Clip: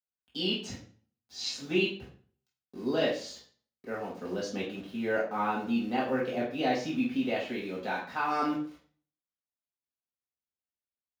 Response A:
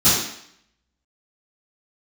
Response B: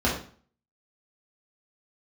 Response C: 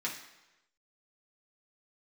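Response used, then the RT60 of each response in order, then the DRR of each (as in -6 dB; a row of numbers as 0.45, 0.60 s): B; 0.65, 0.45, 1.0 s; -17.0, -5.5, -5.0 dB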